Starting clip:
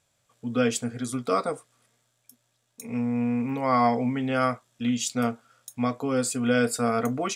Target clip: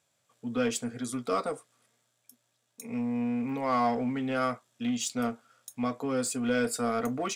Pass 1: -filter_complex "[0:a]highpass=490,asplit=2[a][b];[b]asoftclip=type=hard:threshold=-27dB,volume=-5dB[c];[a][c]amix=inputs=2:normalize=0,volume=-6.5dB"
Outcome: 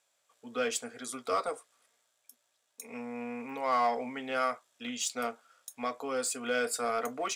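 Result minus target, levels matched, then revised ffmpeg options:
125 Hz band -15.0 dB
-filter_complex "[0:a]highpass=140,asplit=2[a][b];[b]asoftclip=type=hard:threshold=-27dB,volume=-5dB[c];[a][c]amix=inputs=2:normalize=0,volume=-6.5dB"

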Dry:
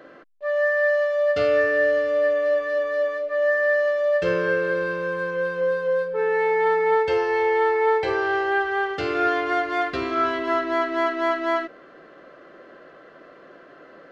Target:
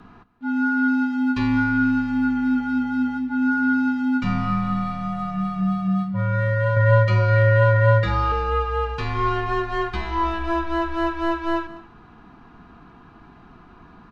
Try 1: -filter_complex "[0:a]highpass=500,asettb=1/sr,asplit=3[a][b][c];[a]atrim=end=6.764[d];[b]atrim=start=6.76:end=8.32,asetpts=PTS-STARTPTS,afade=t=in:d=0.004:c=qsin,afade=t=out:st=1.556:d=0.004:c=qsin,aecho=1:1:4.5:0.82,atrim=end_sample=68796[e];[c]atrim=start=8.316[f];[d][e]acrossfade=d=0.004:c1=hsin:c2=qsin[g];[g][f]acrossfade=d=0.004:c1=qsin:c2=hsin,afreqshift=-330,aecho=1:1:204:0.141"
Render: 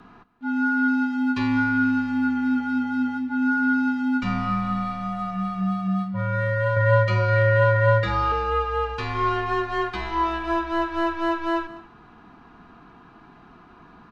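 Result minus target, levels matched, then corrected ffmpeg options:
125 Hz band -2.5 dB
-filter_complex "[0:a]highpass=160,asettb=1/sr,asplit=3[a][b][c];[a]atrim=end=6.764[d];[b]atrim=start=6.76:end=8.32,asetpts=PTS-STARTPTS,afade=t=in:d=0.004:c=qsin,afade=t=out:st=1.556:d=0.004:c=qsin,aecho=1:1:4.5:0.82,atrim=end_sample=68796[e];[c]atrim=start=8.316[f];[d][e]acrossfade=d=0.004:c1=hsin:c2=qsin[g];[g][f]acrossfade=d=0.004:c1=qsin:c2=hsin,afreqshift=-330,aecho=1:1:204:0.141"

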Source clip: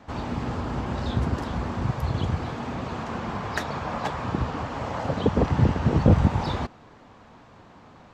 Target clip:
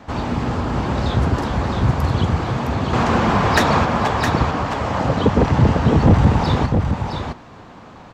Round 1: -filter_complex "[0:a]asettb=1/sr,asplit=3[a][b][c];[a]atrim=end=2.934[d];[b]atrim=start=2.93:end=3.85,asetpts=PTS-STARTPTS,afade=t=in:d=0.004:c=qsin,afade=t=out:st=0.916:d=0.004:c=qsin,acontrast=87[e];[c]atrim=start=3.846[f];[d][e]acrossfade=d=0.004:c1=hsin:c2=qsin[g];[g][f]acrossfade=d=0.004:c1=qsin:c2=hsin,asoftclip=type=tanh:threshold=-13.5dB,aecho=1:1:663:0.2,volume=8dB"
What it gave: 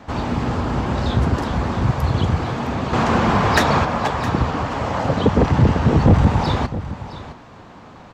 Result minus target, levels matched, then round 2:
echo-to-direct -8.5 dB
-filter_complex "[0:a]asettb=1/sr,asplit=3[a][b][c];[a]atrim=end=2.934[d];[b]atrim=start=2.93:end=3.85,asetpts=PTS-STARTPTS,afade=t=in:d=0.004:c=qsin,afade=t=out:st=0.916:d=0.004:c=qsin,acontrast=87[e];[c]atrim=start=3.846[f];[d][e]acrossfade=d=0.004:c1=hsin:c2=qsin[g];[g][f]acrossfade=d=0.004:c1=qsin:c2=hsin,asoftclip=type=tanh:threshold=-13.5dB,aecho=1:1:663:0.531,volume=8dB"

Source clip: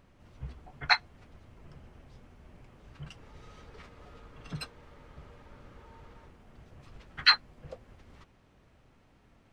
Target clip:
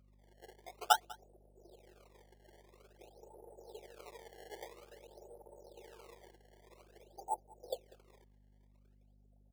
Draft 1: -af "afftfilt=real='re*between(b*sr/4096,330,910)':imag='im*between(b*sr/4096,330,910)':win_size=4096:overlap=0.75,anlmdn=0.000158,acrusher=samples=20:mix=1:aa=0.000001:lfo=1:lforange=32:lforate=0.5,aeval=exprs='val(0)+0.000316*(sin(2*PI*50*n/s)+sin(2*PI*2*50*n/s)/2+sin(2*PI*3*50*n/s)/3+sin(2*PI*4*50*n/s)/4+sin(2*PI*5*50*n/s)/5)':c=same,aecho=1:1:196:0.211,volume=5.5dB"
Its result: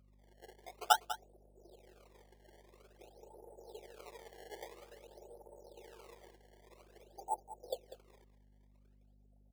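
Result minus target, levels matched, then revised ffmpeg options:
echo-to-direct +9.5 dB
-af "afftfilt=real='re*between(b*sr/4096,330,910)':imag='im*between(b*sr/4096,330,910)':win_size=4096:overlap=0.75,anlmdn=0.000158,acrusher=samples=20:mix=1:aa=0.000001:lfo=1:lforange=32:lforate=0.5,aeval=exprs='val(0)+0.000316*(sin(2*PI*50*n/s)+sin(2*PI*2*50*n/s)/2+sin(2*PI*3*50*n/s)/3+sin(2*PI*4*50*n/s)/4+sin(2*PI*5*50*n/s)/5)':c=same,aecho=1:1:196:0.0708,volume=5.5dB"

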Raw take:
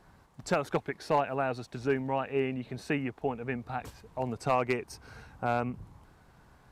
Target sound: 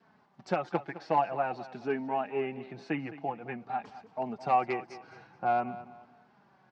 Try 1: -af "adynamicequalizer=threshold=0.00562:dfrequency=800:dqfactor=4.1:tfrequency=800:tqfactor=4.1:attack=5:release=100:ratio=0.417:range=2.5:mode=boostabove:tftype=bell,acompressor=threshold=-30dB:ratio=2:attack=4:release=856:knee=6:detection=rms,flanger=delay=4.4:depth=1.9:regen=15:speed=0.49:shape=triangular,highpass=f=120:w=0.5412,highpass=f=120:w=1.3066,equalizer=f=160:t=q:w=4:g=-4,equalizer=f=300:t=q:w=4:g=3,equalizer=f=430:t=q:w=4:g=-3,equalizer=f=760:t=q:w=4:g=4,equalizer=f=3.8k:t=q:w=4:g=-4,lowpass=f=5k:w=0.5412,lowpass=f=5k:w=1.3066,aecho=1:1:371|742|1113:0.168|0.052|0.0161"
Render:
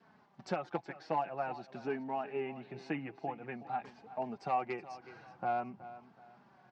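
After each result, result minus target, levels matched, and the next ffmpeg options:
echo 0.158 s late; compressor: peak gain reduction +7.5 dB
-af "adynamicequalizer=threshold=0.00562:dfrequency=800:dqfactor=4.1:tfrequency=800:tqfactor=4.1:attack=5:release=100:ratio=0.417:range=2.5:mode=boostabove:tftype=bell,acompressor=threshold=-30dB:ratio=2:attack=4:release=856:knee=6:detection=rms,flanger=delay=4.4:depth=1.9:regen=15:speed=0.49:shape=triangular,highpass=f=120:w=0.5412,highpass=f=120:w=1.3066,equalizer=f=160:t=q:w=4:g=-4,equalizer=f=300:t=q:w=4:g=3,equalizer=f=430:t=q:w=4:g=-3,equalizer=f=760:t=q:w=4:g=4,equalizer=f=3.8k:t=q:w=4:g=-4,lowpass=f=5k:w=0.5412,lowpass=f=5k:w=1.3066,aecho=1:1:213|426|639:0.168|0.052|0.0161"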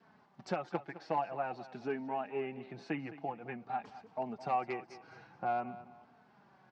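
compressor: peak gain reduction +7.5 dB
-af "adynamicequalizer=threshold=0.00562:dfrequency=800:dqfactor=4.1:tfrequency=800:tqfactor=4.1:attack=5:release=100:ratio=0.417:range=2.5:mode=boostabove:tftype=bell,flanger=delay=4.4:depth=1.9:regen=15:speed=0.49:shape=triangular,highpass=f=120:w=0.5412,highpass=f=120:w=1.3066,equalizer=f=160:t=q:w=4:g=-4,equalizer=f=300:t=q:w=4:g=3,equalizer=f=430:t=q:w=4:g=-3,equalizer=f=760:t=q:w=4:g=4,equalizer=f=3.8k:t=q:w=4:g=-4,lowpass=f=5k:w=0.5412,lowpass=f=5k:w=1.3066,aecho=1:1:213|426|639:0.168|0.052|0.0161"

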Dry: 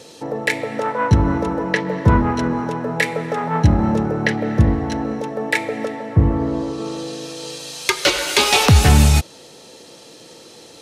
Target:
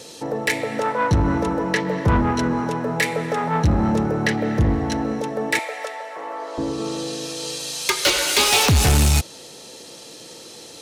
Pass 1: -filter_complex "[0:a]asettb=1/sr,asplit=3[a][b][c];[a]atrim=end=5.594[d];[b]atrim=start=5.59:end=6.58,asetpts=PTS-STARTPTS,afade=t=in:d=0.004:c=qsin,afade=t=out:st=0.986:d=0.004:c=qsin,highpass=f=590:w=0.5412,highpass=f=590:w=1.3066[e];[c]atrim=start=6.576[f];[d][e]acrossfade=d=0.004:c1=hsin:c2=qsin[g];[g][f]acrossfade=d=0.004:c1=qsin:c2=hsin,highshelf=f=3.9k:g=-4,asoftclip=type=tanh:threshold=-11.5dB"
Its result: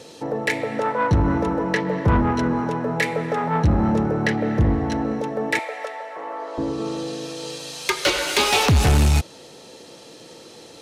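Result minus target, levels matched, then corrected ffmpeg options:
8000 Hz band -5.5 dB
-filter_complex "[0:a]asettb=1/sr,asplit=3[a][b][c];[a]atrim=end=5.594[d];[b]atrim=start=5.59:end=6.58,asetpts=PTS-STARTPTS,afade=t=in:d=0.004:c=qsin,afade=t=out:st=0.986:d=0.004:c=qsin,highpass=f=590:w=0.5412,highpass=f=590:w=1.3066[e];[c]atrim=start=6.576[f];[d][e]acrossfade=d=0.004:c1=hsin:c2=qsin[g];[g][f]acrossfade=d=0.004:c1=qsin:c2=hsin,highshelf=f=3.9k:g=6,asoftclip=type=tanh:threshold=-11.5dB"

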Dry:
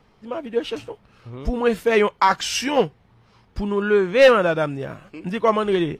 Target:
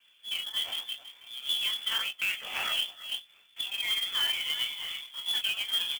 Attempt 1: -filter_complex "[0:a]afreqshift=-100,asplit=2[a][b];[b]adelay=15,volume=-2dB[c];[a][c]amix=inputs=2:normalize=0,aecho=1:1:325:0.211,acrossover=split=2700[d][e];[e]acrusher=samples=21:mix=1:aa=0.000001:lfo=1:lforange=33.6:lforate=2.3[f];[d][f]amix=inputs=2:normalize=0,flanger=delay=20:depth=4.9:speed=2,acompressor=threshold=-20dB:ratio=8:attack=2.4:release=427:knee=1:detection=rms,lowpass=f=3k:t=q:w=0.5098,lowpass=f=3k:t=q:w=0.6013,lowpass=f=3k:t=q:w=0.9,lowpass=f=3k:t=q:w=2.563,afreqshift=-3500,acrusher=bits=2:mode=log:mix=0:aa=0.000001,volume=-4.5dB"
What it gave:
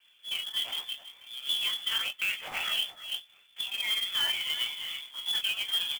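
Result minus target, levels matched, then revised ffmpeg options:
decimation with a swept rate: distortion -5 dB
-filter_complex "[0:a]afreqshift=-100,asplit=2[a][b];[b]adelay=15,volume=-2dB[c];[a][c]amix=inputs=2:normalize=0,aecho=1:1:325:0.211,acrossover=split=2700[d][e];[e]acrusher=samples=21:mix=1:aa=0.000001:lfo=1:lforange=33.6:lforate=1.4[f];[d][f]amix=inputs=2:normalize=0,flanger=delay=20:depth=4.9:speed=2,acompressor=threshold=-20dB:ratio=8:attack=2.4:release=427:knee=1:detection=rms,lowpass=f=3k:t=q:w=0.5098,lowpass=f=3k:t=q:w=0.6013,lowpass=f=3k:t=q:w=0.9,lowpass=f=3k:t=q:w=2.563,afreqshift=-3500,acrusher=bits=2:mode=log:mix=0:aa=0.000001,volume=-4.5dB"

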